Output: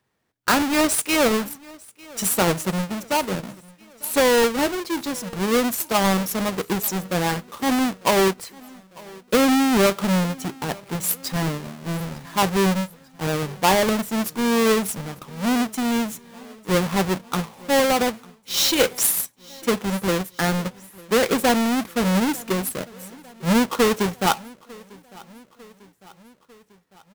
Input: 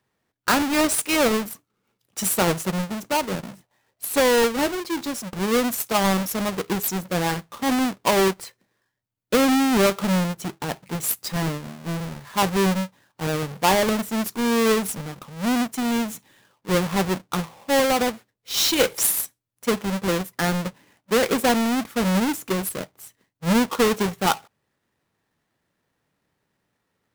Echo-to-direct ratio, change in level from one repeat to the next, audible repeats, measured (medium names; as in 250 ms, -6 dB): -21.5 dB, -4.5 dB, 3